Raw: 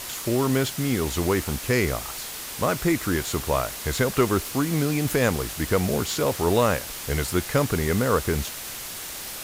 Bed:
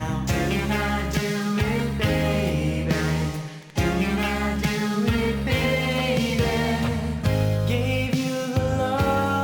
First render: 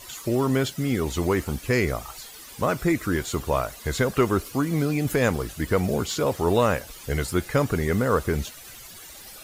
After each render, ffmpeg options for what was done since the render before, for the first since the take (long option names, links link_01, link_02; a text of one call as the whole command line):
ffmpeg -i in.wav -af "afftdn=noise_reduction=13:noise_floor=-36" out.wav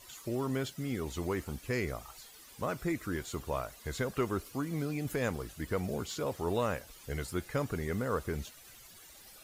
ffmpeg -i in.wav -af "volume=-11dB" out.wav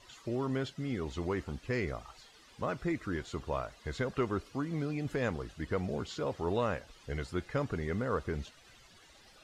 ffmpeg -i in.wav -af "lowpass=4700,bandreject=frequency=2300:width=28" out.wav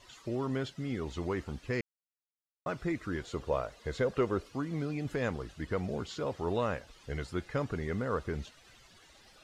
ffmpeg -i in.wav -filter_complex "[0:a]asettb=1/sr,asplit=3[link_01][link_02][link_03];[link_01]atrim=end=3.234[link_04];[link_02]atrim=start=3.23:end=4.47,asetpts=PTS-STARTPTS,afade=type=in:duration=0.004:curve=qsin,afade=type=out:start_time=1.236:duration=0.004:curve=qsin,equalizer=frequency=500:width=2.6:gain=7.5[link_05];[link_03]atrim=start=4.466[link_06];[link_04][link_05]acrossfade=duration=0.004:curve1=hsin:curve2=qsin[link_07];[link_07][link_06]acrossfade=duration=0.004:curve1=qsin:curve2=hsin,asplit=3[link_08][link_09][link_10];[link_08]atrim=end=1.81,asetpts=PTS-STARTPTS,afade=type=out:start_time=1.806:duration=0.004:curve=hsin[link_11];[link_09]atrim=start=1.81:end=2.66,asetpts=PTS-STARTPTS,volume=0[link_12];[link_10]atrim=start=2.66,asetpts=PTS-STARTPTS,afade=type=in:duration=0.004:curve=hsin[link_13];[link_11][link_12][link_13]concat=n=3:v=0:a=1" out.wav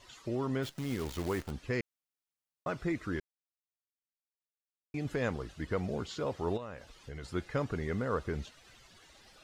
ffmpeg -i in.wav -filter_complex "[0:a]asplit=3[link_01][link_02][link_03];[link_01]afade=type=out:start_time=0.62:duration=0.02[link_04];[link_02]acrusher=bits=8:dc=4:mix=0:aa=0.000001,afade=type=in:start_time=0.62:duration=0.02,afade=type=out:start_time=1.5:duration=0.02[link_05];[link_03]afade=type=in:start_time=1.5:duration=0.02[link_06];[link_04][link_05][link_06]amix=inputs=3:normalize=0,asplit=3[link_07][link_08][link_09];[link_07]afade=type=out:start_time=6.56:duration=0.02[link_10];[link_08]acompressor=threshold=-40dB:ratio=4:attack=3.2:release=140:knee=1:detection=peak,afade=type=in:start_time=6.56:duration=0.02,afade=type=out:start_time=7.23:duration=0.02[link_11];[link_09]afade=type=in:start_time=7.23:duration=0.02[link_12];[link_10][link_11][link_12]amix=inputs=3:normalize=0,asplit=3[link_13][link_14][link_15];[link_13]atrim=end=3.2,asetpts=PTS-STARTPTS,afade=type=out:start_time=3.196:duration=0.004:curve=hsin[link_16];[link_14]atrim=start=3.2:end=4.94,asetpts=PTS-STARTPTS,volume=0[link_17];[link_15]atrim=start=4.94,asetpts=PTS-STARTPTS,afade=type=in:duration=0.004:curve=hsin[link_18];[link_16][link_17][link_18]concat=n=3:v=0:a=1" out.wav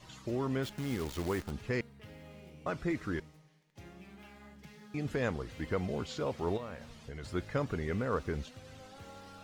ffmpeg -i in.wav -i bed.wav -filter_complex "[1:a]volume=-29.5dB[link_01];[0:a][link_01]amix=inputs=2:normalize=0" out.wav